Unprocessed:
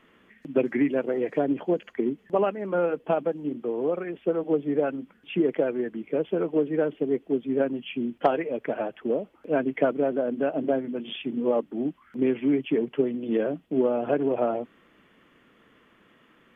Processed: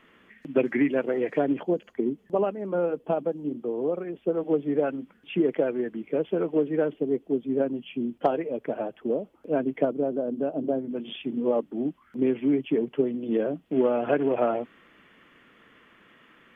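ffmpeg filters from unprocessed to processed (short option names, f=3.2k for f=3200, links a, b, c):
-af "asetnsamples=n=441:p=0,asendcmd='1.63 equalizer g -8.5;4.37 equalizer g -1;6.94 equalizer g -7.5;9.85 equalizer g -15;10.91 equalizer g -4;13.66 equalizer g 5.5',equalizer=f=2k:t=o:w=1.8:g=3"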